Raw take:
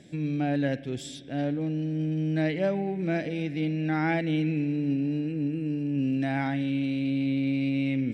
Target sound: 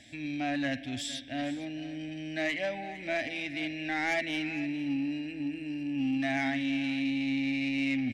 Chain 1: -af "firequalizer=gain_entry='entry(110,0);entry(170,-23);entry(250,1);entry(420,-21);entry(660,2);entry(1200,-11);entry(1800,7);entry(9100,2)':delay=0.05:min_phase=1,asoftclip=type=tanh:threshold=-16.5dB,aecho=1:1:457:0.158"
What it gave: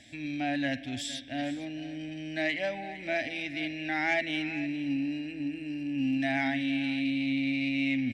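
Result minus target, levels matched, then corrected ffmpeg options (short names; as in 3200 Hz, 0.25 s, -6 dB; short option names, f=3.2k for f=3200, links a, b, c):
soft clip: distortion -10 dB
-af "firequalizer=gain_entry='entry(110,0);entry(170,-23);entry(250,1);entry(420,-21);entry(660,2);entry(1200,-11);entry(1800,7);entry(9100,2)':delay=0.05:min_phase=1,asoftclip=type=tanh:threshold=-23dB,aecho=1:1:457:0.158"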